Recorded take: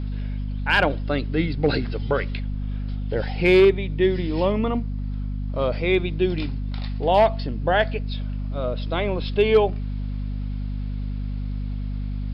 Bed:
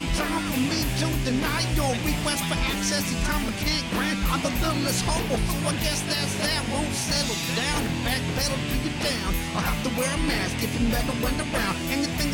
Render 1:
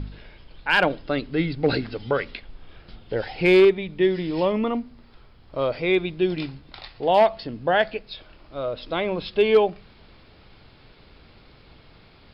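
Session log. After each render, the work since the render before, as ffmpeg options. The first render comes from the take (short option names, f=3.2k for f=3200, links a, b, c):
-af "bandreject=f=50:t=h:w=4,bandreject=f=100:t=h:w=4,bandreject=f=150:t=h:w=4,bandreject=f=200:t=h:w=4,bandreject=f=250:t=h:w=4"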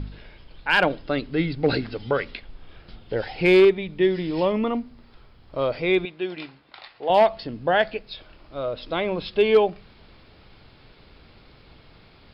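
-filter_complex "[0:a]asettb=1/sr,asplit=3[a][b][c];[a]atrim=end=6.054[d];[b]atrim=start=6.05:end=7.1,asetpts=PTS-STARTPTS,afade=t=in:d=0.004:c=qsin,afade=t=out:st=1.046:d=0.004:c=qsin,bandpass=f=1.4k:t=q:w=0.53[e];[c]atrim=start=7.096[f];[d][e]acrossfade=d=0.004:c1=hsin:c2=qsin[g];[g][f]acrossfade=d=0.004:c1=qsin:c2=hsin"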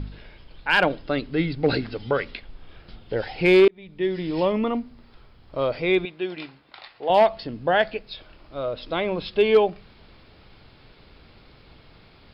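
-filter_complex "[0:a]asplit=2[a][b];[a]atrim=end=3.68,asetpts=PTS-STARTPTS,afade=t=out:st=3.676:d=0.004:c=hsin[c];[b]atrim=start=3.68,asetpts=PTS-STARTPTS,afade=t=in:d=0.63[d];[c][d]concat=n=2:v=0:a=1"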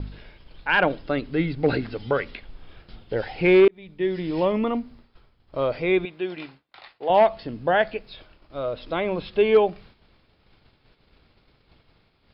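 -filter_complex "[0:a]agate=range=-33dB:threshold=-42dB:ratio=3:detection=peak,acrossover=split=3200[a][b];[b]acompressor=threshold=-49dB:ratio=4:attack=1:release=60[c];[a][c]amix=inputs=2:normalize=0"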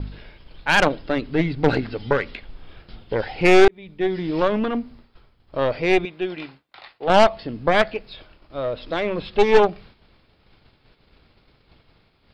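-filter_complex "[0:a]asplit=2[a][b];[b]asoftclip=type=tanh:threshold=-21dB,volume=-8.5dB[c];[a][c]amix=inputs=2:normalize=0,aeval=exprs='0.398*(cos(1*acos(clip(val(0)/0.398,-1,1)))-cos(1*PI/2))+0.158*(cos(4*acos(clip(val(0)/0.398,-1,1)))-cos(4*PI/2))+0.0631*(cos(6*acos(clip(val(0)/0.398,-1,1)))-cos(6*PI/2))':c=same"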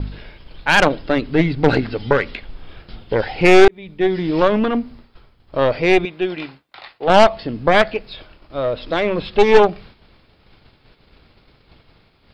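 -af "volume=5dB,alimiter=limit=-1dB:level=0:latency=1"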